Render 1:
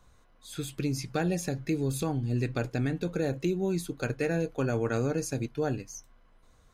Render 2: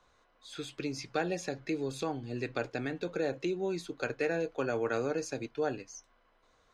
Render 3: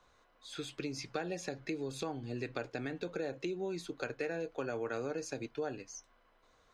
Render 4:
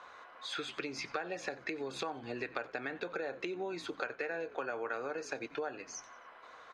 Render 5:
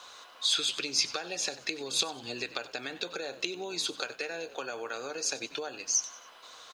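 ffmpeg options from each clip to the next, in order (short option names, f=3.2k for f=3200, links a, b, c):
-filter_complex "[0:a]acrossover=split=310 6500:gain=0.2 1 0.0794[a][b][c];[a][b][c]amix=inputs=3:normalize=0"
-af "acompressor=threshold=-36dB:ratio=2.5"
-filter_complex "[0:a]bandpass=f=1.3k:t=q:w=0.87:csg=0,asplit=4[a][b][c][d];[b]adelay=90,afreqshift=-62,volume=-21dB[e];[c]adelay=180,afreqshift=-124,volume=-29.2dB[f];[d]adelay=270,afreqshift=-186,volume=-37.4dB[g];[a][e][f][g]amix=inputs=4:normalize=0,acompressor=threshold=-57dB:ratio=3,volume=18dB"
-filter_complex "[0:a]asplit=4[a][b][c][d];[b]adelay=96,afreqshift=61,volume=-19dB[e];[c]adelay=192,afreqshift=122,volume=-27.9dB[f];[d]adelay=288,afreqshift=183,volume=-36.7dB[g];[a][e][f][g]amix=inputs=4:normalize=0,aexciter=amount=8.5:drive=2.9:freq=2.9k"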